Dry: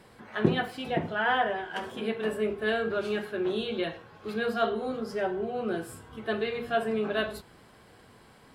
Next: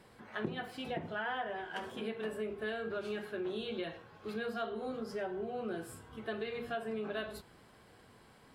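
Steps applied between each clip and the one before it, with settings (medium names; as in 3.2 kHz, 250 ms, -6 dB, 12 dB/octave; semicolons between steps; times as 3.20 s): compression 4:1, threshold -30 dBFS, peak gain reduction 12 dB; trim -5 dB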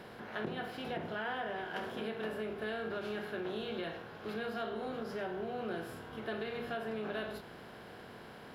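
spectral levelling over time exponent 0.6; peaking EQ 8.4 kHz -15 dB 0.27 oct; endings held to a fixed fall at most 140 dB/s; trim -3.5 dB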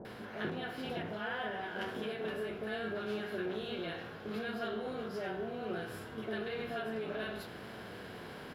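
flange 0.65 Hz, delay 9 ms, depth 3.2 ms, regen -40%; bands offset in time lows, highs 50 ms, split 830 Hz; reverse; upward compressor, threshold -45 dBFS; reverse; trim +5 dB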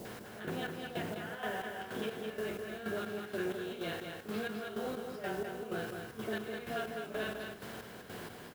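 in parallel at -6 dB: word length cut 8-bit, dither triangular; on the sum: square tremolo 2.1 Hz, depth 65%, duty 40%; delay 205 ms -5.5 dB; trim -2 dB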